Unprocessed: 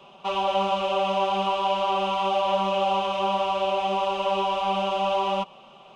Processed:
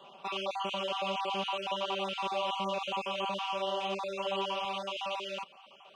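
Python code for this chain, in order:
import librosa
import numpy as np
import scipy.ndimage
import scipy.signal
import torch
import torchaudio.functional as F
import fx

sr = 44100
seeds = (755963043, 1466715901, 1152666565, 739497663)

y = fx.spec_dropout(x, sr, seeds[0], share_pct=28)
y = fx.highpass(y, sr, hz=fx.steps((0.0, 280.0), (4.65, 770.0)), slope=6)
y = fx.dynamic_eq(y, sr, hz=770.0, q=1.2, threshold_db=-40.0, ratio=4.0, max_db=-8)
y = y * librosa.db_to_amplitude(-2.5)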